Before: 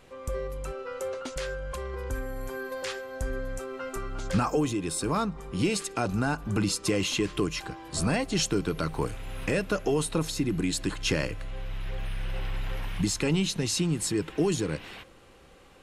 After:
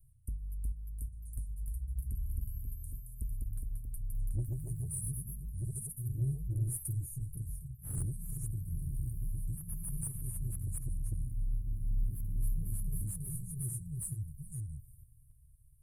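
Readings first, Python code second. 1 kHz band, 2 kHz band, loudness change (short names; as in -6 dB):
under -35 dB, under -40 dB, -9.5 dB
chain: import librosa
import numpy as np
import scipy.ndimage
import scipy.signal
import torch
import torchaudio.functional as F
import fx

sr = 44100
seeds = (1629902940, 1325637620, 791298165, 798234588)

y = scipy.signal.sosfilt(scipy.signal.cheby1(5, 1.0, [130.0, 9400.0], 'bandstop', fs=sr, output='sos'), x)
y = 10.0 ** (-30.5 / 20.0) * np.tanh(y / 10.0 ** (-30.5 / 20.0))
y = fx.echo_pitch(y, sr, ms=381, semitones=1, count=3, db_per_echo=-3.0)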